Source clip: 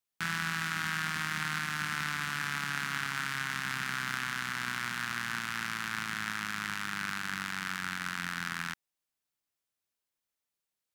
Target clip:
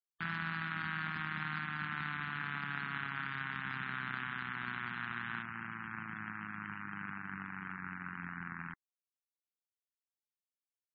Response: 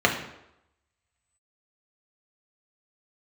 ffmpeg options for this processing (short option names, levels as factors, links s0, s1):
-af "asetnsamples=n=441:p=0,asendcmd='5.43 lowpass f 1000',lowpass=f=1900:p=1,afftfilt=real='re*gte(hypot(re,im),0.00631)':imag='im*gte(hypot(re,im),0.00631)':win_size=1024:overlap=0.75,volume=0.75"